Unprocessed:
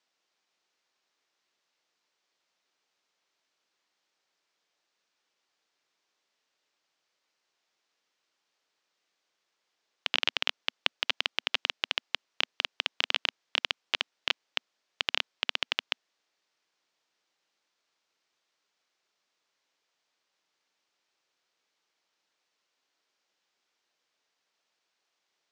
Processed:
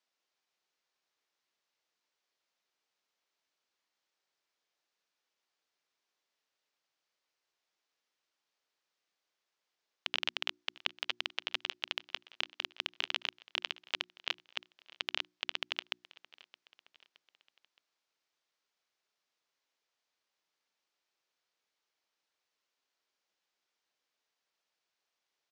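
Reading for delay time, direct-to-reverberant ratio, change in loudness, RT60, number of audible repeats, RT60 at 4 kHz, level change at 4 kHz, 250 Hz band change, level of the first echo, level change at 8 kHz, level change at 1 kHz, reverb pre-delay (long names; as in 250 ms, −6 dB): 619 ms, no reverb audible, −6.5 dB, no reverb audible, 3, no reverb audible, −6.5 dB, −7.0 dB, −21.5 dB, −6.5 dB, −6.5 dB, no reverb audible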